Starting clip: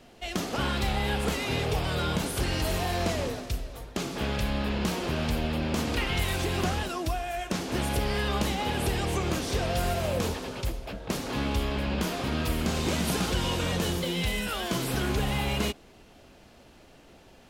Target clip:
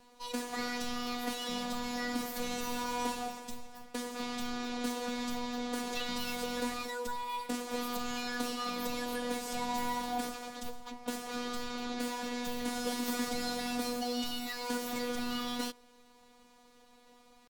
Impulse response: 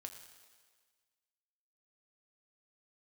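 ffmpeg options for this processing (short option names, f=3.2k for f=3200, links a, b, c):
-af "afftfilt=real='hypot(re,im)*cos(PI*b)':imag='0':win_size=1024:overlap=0.75,asetrate=62367,aresample=44100,atempo=0.707107,volume=-3.5dB"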